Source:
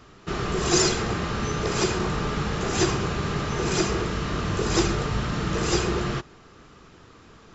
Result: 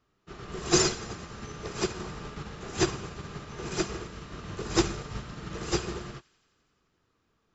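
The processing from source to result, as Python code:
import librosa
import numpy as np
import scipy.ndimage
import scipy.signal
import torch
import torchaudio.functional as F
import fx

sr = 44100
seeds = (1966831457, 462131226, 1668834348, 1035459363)

p1 = x + fx.echo_wet_highpass(x, sr, ms=87, feedback_pct=77, hz=2000.0, wet_db=-11.5, dry=0)
y = fx.upward_expand(p1, sr, threshold_db=-33.0, expansion=2.5)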